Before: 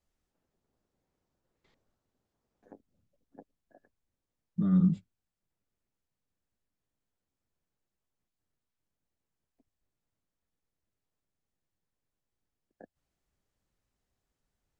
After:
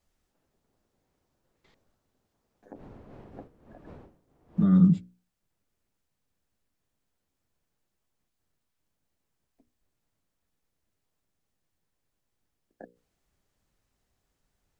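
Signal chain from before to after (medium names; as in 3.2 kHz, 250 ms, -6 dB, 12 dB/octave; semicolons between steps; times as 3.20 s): 2.74–4.63 s: wind noise 400 Hz -47 dBFS; hum notches 60/120/180/240/300/360/420/480/540 Hz; trim +6.5 dB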